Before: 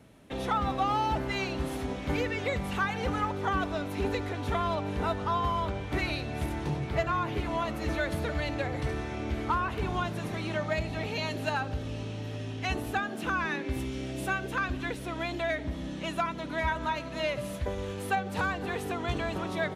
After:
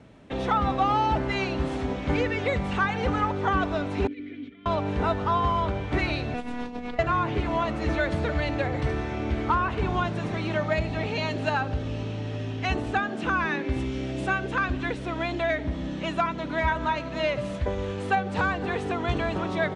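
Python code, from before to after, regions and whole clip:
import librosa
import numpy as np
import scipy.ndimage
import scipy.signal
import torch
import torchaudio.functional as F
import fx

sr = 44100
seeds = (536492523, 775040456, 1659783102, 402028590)

y = fx.chain(x, sr, fx.peak_eq(hz=12000.0, db=-13.0, octaves=0.84),
    fx.over_compress(threshold_db=-32.0, ratio=-0.5),
    fx.vowel_filter(vowel='i'), at=(4.07, 4.66))
y = fx.chain(y, sr, fx.over_compress(threshold_db=-35.0, ratio=-1.0),
    fx.robotise(hz=243.0), at=(6.34, 6.99))
y = scipy.signal.sosfilt(scipy.signal.butter(8, 9200.0, 'lowpass', fs=sr, output='sos'), y)
y = fx.high_shelf(y, sr, hz=6100.0, db=-12.0)
y = F.gain(torch.from_numpy(y), 5.0).numpy()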